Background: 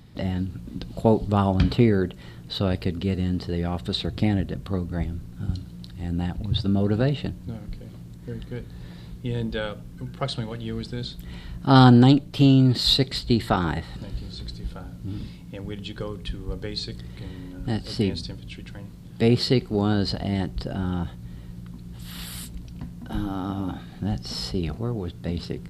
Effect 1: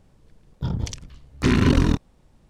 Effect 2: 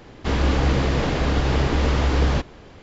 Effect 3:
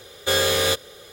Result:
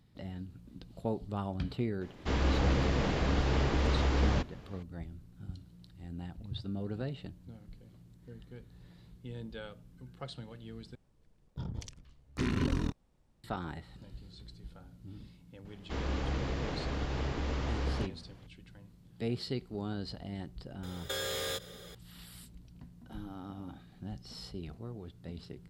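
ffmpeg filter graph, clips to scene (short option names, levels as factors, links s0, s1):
-filter_complex "[2:a]asplit=2[s0][s1];[0:a]volume=0.168[s2];[3:a]acompressor=threshold=0.0501:ratio=6:attack=3.2:release=140:knee=1:detection=peak[s3];[s2]asplit=2[s4][s5];[s4]atrim=end=10.954[s6];[1:a]atrim=end=2.49,asetpts=PTS-STARTPTS,volume=0.211[s7];[s5]atrim=start=13.436[s8];[s0]atrim=end=2.82,asetpts=PTS-STARTPTS,volume=0.355,afade=t=in:d=0.004:c=hsin,afade=t=out:st=2.816:d=0.004:c=hsin,adelay=2010[s9];[s1]atrim=end=2.82,asetpts=PTS-STARTPTS,volume=0.188,afade=t=in:d=0.004:c=hsin,afade=t=out:st=2.816:d=0.004:c=hsin,adelay=15650[s10];[s3]atrim=end=1.12,asetpts=PTS-STARTPTS,volume=0.473,afade=t=in:d=0.004:c=hsin,afade=t=out:st=1.116:d=0.004:c=hsin,adelay=20830[s11];[s6][s7]acrossfade=d=0.004:c1=hsin:c2=hsin[s12];[s12][s8]acrossfade=d=0.004:c1=hsin:c2=hsin[s13];[s13][s9][s10][s11]amix=inputs=4:normalize=0"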